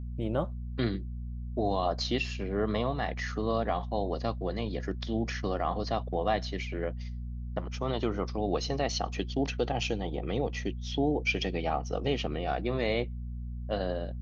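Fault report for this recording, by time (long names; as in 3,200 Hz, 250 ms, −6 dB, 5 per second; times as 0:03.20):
mains hum 60 Hz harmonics 4 −37 dBFS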